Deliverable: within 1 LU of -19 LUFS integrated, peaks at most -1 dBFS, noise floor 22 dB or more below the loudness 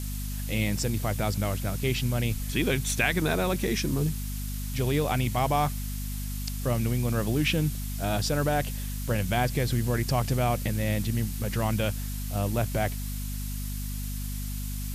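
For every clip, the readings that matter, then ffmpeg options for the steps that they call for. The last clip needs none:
hum 50 Hz; highest harmonic 250 Hz; hum level -31 dBFS; noise floor -33 dBFS; noise floor target -51 dBFS; loudness -28.5 LUFS; peak level -11.0 dBFS; loudness target -19.0 LUFS
-> -af "bandreject=f=50:t=h:w=4,bandreject=f=100:t=h:w=4,bandreject=f=150:t=h:w=4,bandreject=f=200:t=h:w=4,bandreject=f=250:t=h:w=4"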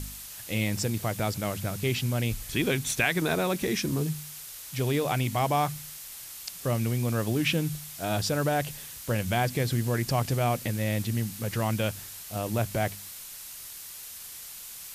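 hum not found; noise floor -43 dBFS; noise floor target -52 dBFS
-> -af "afftdn=nr=9:nf=-43"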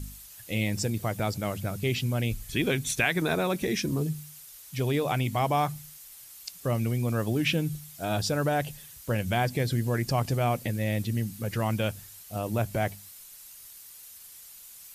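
noise floor -48 dBFS; noise floor target -51 dBFS
-> -af "afftdn=nr=6:nf=-48"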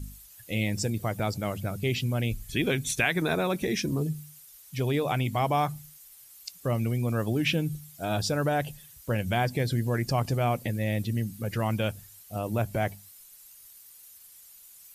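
noise floor -52 dBFS; loudness -29.0 LUFS; peak level -11.5 dBFS; loudness target -19.0 LUFS
-> -af "volume=3.16"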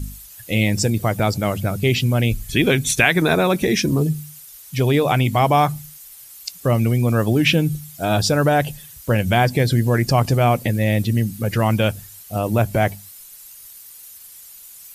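loudness -19.0 LUFS; peak level -1.5 dBFS; noise floor -42 dBFS

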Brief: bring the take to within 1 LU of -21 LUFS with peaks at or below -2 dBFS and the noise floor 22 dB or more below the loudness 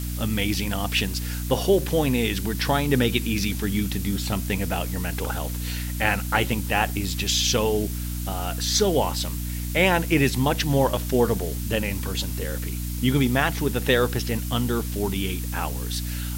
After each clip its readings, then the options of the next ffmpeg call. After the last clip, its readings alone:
hum 60 Hz; highest harmonic 300 Hz; hum level -27 dBFS; noise floor -29 dBFS; noise floor target -46 dBFS; loudness -24.0 LUFS; peak level -5.0 dBFS; loudness target -21.0 LUFS
-> -af "bandreject=f=60:t=h:w=4,bandreject=f=120:t=h:w=4,bandreject=f=180:t=h:w=4,bandreject=f=240:t=h:w=4,bandreject=f=300:t=h:w=4"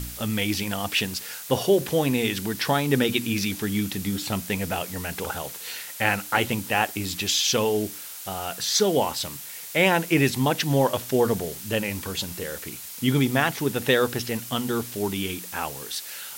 hum not found; noise floor -39 dBFS; noise floor target -47 dBFS
-> -af "afftdn=nr=8:nf=-39"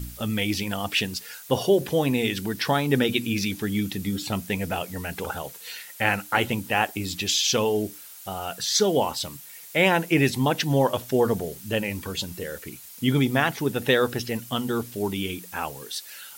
noise floor -44 dBFS; noise floor target -47 dBFS
-> -af "afftdn=nr=6:nf=-44"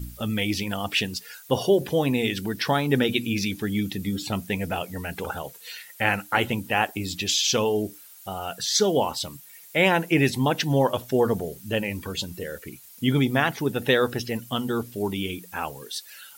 noise floor -48 dBFS; loudness -25.0 LUFS; peak level -5.0 dBFS; loudness target -21.0 LUFS
-> -af "volume=1.58,alimiter=limit=0.794:level=0:latency=1"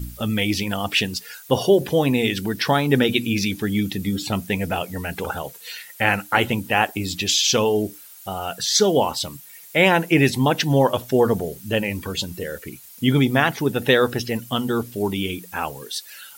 loudness -21.0 LUFS; peak level -2.0 dBFS; noise floor -44 dBFS

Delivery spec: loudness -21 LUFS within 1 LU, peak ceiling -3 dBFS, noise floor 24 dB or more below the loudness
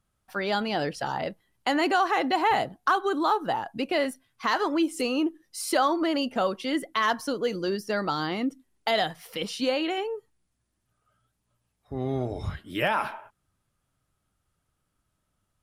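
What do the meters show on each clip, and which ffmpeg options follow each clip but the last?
loudness -27.5 LUFS; peak level -12.5 dBFS; loudness target -21.0 LUFS
-> -af "volume=2.11"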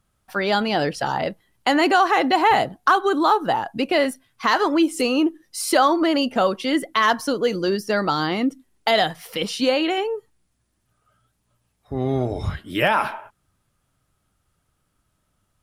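loudness -21.0 LUFS; peak level -6.0 dBFS; noise floor -71 dBFS

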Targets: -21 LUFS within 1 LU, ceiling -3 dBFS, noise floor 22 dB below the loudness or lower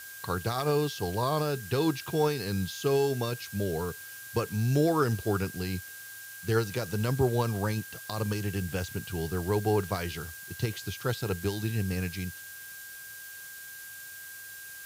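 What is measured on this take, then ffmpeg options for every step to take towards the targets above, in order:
steady tone 1.6 kHz; tone level -45 dBFS; noise floor -45 dBFS; noise floor target -53 dBFS; loudness -30.5 LUFS; peak level -13.0 dBFS; loudness target -21.0 LUFS
-> -af "bandreject=f=1600:w=30"
-af "afftdn=nr=8:nf=-45"
-af "volume=2.99"

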